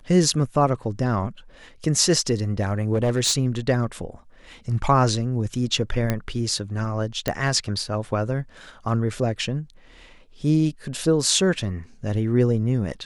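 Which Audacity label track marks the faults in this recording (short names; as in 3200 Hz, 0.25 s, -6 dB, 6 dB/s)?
2.930000	3.370000	clipped -16 dBFS
6.100000	6.100000	pop -9 dBFS
7.280000	7.280000	pop -8 dBFS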